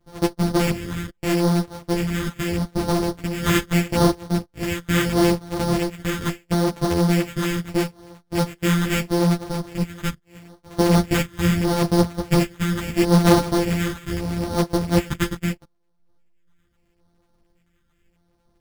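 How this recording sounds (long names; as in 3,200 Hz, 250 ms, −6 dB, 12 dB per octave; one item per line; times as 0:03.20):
a buzz of ramps at a fixed pitch in blocks of 256 samples
phaser sweep stages 4, 0.77 Hz, lowest notch 700–2,900 Hz
aliases and images of a low sample rate 5,000 Hz, jitter 0%
a shimmering, thickened sound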